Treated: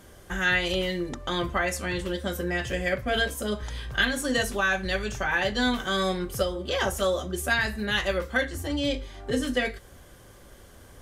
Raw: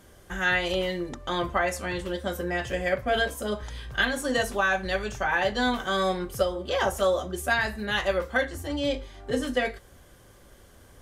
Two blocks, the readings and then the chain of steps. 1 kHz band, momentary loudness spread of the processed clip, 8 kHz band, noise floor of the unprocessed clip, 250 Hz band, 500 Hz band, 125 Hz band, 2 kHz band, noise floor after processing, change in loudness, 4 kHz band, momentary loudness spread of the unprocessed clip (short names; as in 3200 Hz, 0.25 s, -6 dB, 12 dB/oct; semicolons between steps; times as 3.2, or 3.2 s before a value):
-3.0 dB, 6 LU, +3.0 dB, -54 dBFS, +2.0 dB, -1.5 dB, +2.5 dB, +0.5 dB, -51 dBFS, 0.0 dB, +2.5 dB, 7 LU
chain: dynamic EQ 780 Hz, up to -7 dB, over -38 dBFS, Q 0.83; gain +3 dB